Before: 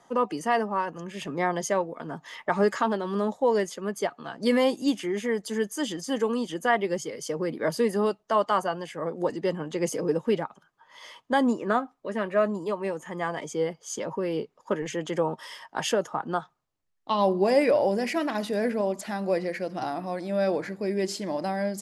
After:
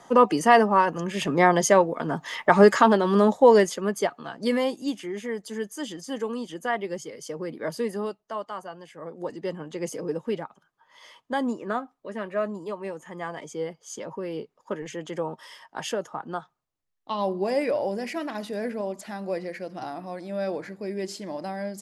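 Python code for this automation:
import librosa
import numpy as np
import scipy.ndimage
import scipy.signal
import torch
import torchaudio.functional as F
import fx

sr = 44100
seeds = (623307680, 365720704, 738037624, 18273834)

y = fx.gain(x, sr, db=fx.line((3.51, 8.0), (4.78, -4.0), (7.9, -4.0), (8.55, -11.5), (9.48, -4.0)))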